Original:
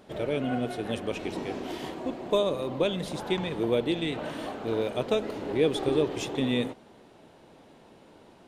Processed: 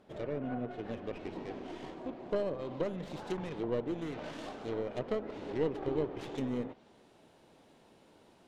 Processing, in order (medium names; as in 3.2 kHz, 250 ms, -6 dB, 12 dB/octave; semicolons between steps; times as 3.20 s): tracing distortion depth 0.46 ms; low-pass that closes with the level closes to 1.5 kHz, closed at -23.5 dBFS; treble shelf 3.7 kHz -7 dB, from 2.36 s +5.5 dB; trim -8 dB